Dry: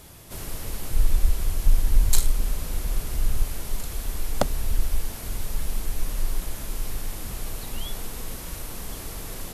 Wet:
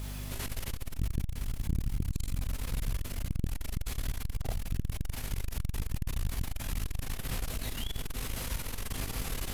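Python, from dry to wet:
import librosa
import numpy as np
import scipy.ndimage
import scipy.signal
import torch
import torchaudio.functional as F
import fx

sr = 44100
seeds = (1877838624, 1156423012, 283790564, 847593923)

p1 = fx.peak_eq(x, sr, hz=2500.0, db=6.0, octaves=2.0)
p2 = fx.rider(p1, sr, range_db=5, speed_s=0.5)
p3 = fx.quant_dither(p2, sr, seeds[0], bits=8, dither='triangular')
p4 = fx.chorus_voices(p3, sr, voices=4, hz=0.51, base_ms=28, depth_ms=4.0, mix_pct=45)
p5 = fx.dmg_buzz(p4, sr, base_hz=50.0, harmonics=5, level_db=-34.0, tilt_db=-8, odd_only=False)
p6 = fx.comb_fb(p5, sr, f0_hz=130.0, decay_s=0.16, harmonics='all', damping=0.0, mix_pct=40)
p7 = p6 + fx.echo_feedback(p6, sr, ms=72, feedback_pct=44, wet_db=-9.5, dry=0)
y = fx.transformer_sat(p7, sr, knee_hz=230.0)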